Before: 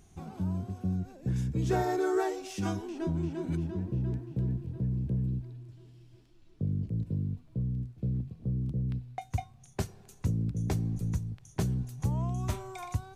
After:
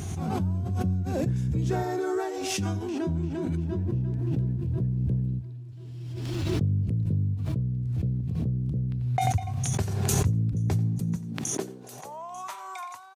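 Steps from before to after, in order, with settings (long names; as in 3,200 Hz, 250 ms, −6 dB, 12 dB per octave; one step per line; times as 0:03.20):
single-tap delay 90 ms −19.5 dB
high-pass filter sweep 89 Hz → 1,000 Hz, 0:10.65–0:12.40
background raised ahead of every attack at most 22 dB per second
level −1 dB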